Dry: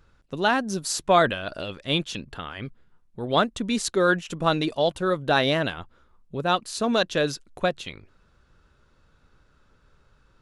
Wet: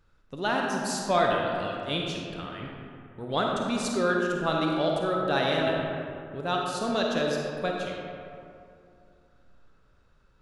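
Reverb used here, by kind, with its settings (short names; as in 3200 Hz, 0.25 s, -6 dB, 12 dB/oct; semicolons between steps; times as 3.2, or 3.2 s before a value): digital reverb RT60 2.6 s, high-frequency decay 0.45×, pre-delay 10 ms, DRR -1 dB; gain -7 dB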